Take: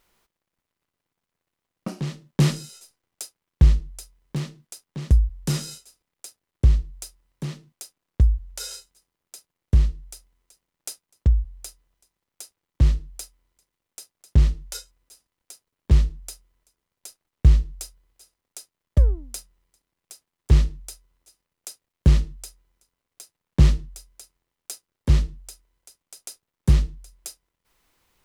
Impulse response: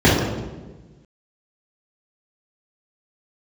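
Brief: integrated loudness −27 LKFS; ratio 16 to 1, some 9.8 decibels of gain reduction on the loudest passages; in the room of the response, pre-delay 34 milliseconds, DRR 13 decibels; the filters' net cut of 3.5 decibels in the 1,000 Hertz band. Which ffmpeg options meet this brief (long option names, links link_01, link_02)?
-filter_complex "[0:a]equalizer=frequency=1000:width_type=o:gain=-4.5,acompressor=threshold=-19dB:ratio=16,asplit=2[link_01][link_02];[1:a]atrim=start_sample=2205,adelay=34[link_03];[link_02][link_03]afir=irnorm=-1:irlink=0,volume=-39dB[link_04];[link_01][link_04]amix=inputs=2:normalize=0,volume=2dB"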